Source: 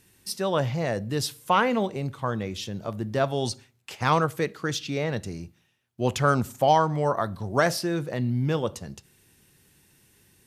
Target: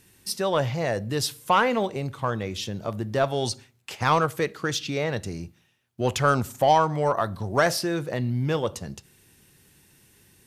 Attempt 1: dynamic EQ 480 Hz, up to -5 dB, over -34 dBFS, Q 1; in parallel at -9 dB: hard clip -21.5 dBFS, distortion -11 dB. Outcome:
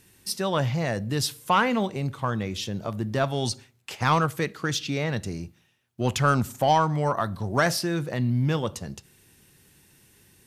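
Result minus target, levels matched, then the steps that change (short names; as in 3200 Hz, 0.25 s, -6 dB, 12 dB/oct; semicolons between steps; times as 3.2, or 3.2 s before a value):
500 Hz band -2.5 dB
change: dynamic EQ 200 Hz, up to -5 dB, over -34 dBFS, Q 1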